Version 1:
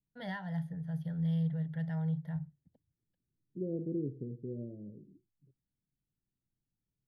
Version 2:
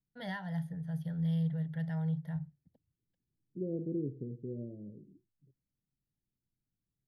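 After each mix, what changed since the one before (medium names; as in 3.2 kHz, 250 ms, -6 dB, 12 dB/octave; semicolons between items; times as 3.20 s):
first voice: add treble shelf 5.2 kHz +7 dB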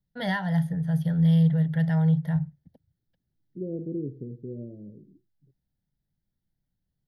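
first voice +12.0 dB; second voice +3.5 dB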